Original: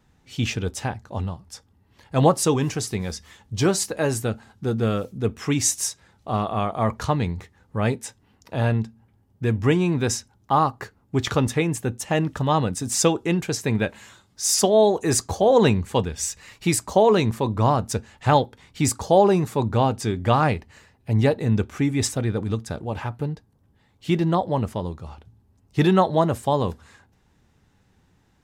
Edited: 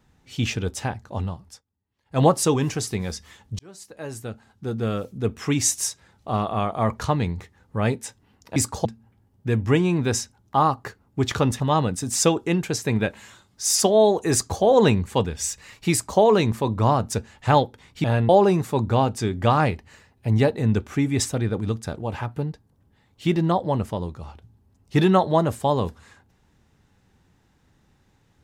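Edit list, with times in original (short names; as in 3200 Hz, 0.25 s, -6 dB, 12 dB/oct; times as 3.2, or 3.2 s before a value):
1.46–2.21 dip -22 dB, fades 0.16 s
3.59–5.38 fade in
8.56–8.81 swap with 18.83–19.12
11.56–12.39 cut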